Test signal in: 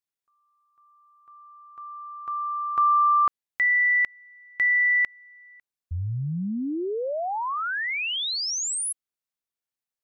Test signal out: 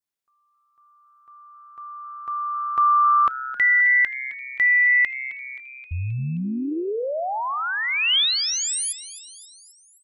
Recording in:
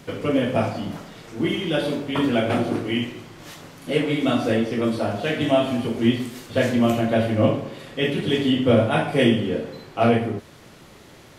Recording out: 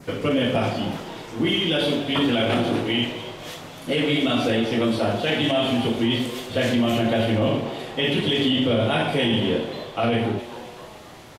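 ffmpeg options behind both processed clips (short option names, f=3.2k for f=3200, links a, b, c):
-filter_complex "[0:a]adynamicequalizer=threshold=0.00708:dfrequency=3200:dqfactor=1.9:tfrequency=3200:tqfactor=1.9:attack=5:release=100:ratio=0.375:range=4:mode=boostabove:tftype=bell,alimiter=limit=-15dB:level=0:latency=1:release=16,asplit=2[a][b];[b]asplit=5[c][d][e][f][g];[c]adelay=264,afreqshift=130,volume=-15dB[h];[d]adelay=528,afreqshift=260,volume=-20dB[i];[e]adelay=792,afreqshift=390,volume=-25.1dB[j];[f]adelay=1056,afreqshift=520,volume=-30.1dB[k];[g]adelay=1320,afreqshift=650,volume=-35.1dB[l];[h][i][j][k][l]amix=inputs=5:normalize=0[m];[a][m]amix=inputs=2:normalize=0,volume=2dB"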